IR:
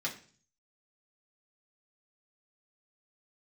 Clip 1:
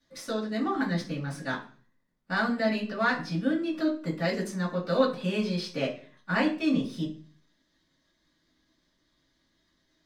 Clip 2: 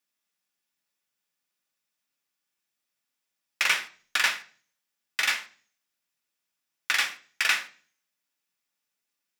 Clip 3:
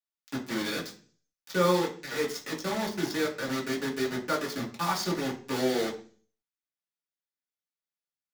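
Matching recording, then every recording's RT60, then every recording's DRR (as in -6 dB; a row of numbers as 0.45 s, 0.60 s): 3; 0.45 s, 0.45 s, 0.45 s; -9.0 dB, 5.5 dB, -4.5 dB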